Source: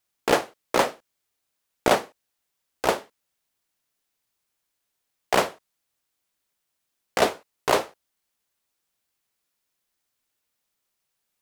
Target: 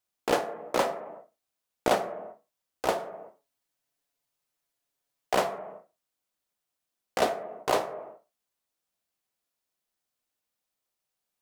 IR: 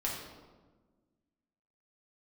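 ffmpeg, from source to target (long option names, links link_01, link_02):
-filter_complex "[0:a]asettb=1/sr,asplit=3[link_01][link_02][link_03];[link_01]atrim=end=2.994[link_04];[link_02]atrim=start=2.99:end=5.33,asetpts=PTS-STARTPTS,afade=type=in:duration=0.004:curve=qsin,afade=type=out:start_time=2.336:duration=0.004:curve=qsin,aecho=1:1:7.1:0.73,atrim=end_sample=103194[link_05];[link_03]atrim=start=5.326[link_06];[link_04][link_05]acrossfade=duration=0.004:curve1=hsin:curve2=qsin[link_07];[link_07][link_06]acrossfade=duration=0.004:curve1=qsin:curve2=hsin,asplit=2[link_08][link_09];[link_09]highpass=170,equalizer=frequency=190:width_type=q:width=4:gain=6,equalizer=frequency=280:width_type=q:width=4:gain=-9,equalizer=frequency=680:width_type=q:width=4:gain=8,lowpass=frequency=2100:width=0.5412,lowpass=frequency=2100:width=1.3066[link_10];[1:a]atrim=start_sample=2205,afade=type=out:start_time=0.44:duration=0.01,atrim=end_sample=19845[link_11];[link_10][link_11]afir=irnorm=-1:irlink=0,volume=-11dB[link_12];[link_08][link_12]amix=inputs=2:normalize=0,volume=-6.5dB"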